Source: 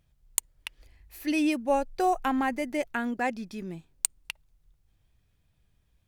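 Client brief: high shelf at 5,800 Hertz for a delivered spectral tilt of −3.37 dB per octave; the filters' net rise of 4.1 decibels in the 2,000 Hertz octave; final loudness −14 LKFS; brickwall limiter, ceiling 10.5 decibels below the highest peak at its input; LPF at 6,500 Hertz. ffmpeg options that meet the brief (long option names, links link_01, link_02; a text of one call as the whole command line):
ffmpeg -i in.wav -af "lowpass=6500,equalizer=frequency=2000:width_type=o:gain=6,highshelf=frequency=5800:gain=-6,volume=18dB,alimiter=limit=-3.5dB:level=0:latency=1" out.wav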